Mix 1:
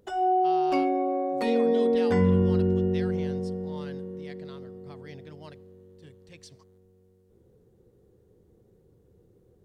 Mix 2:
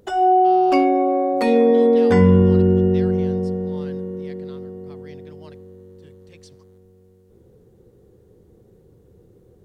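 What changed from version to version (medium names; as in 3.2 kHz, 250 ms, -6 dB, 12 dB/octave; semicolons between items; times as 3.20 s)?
background +8.5 dB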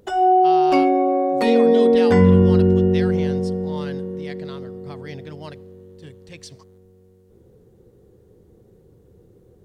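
speech +9.5 dB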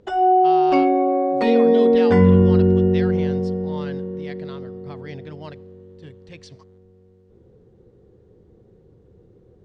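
master: add distance through air 120 m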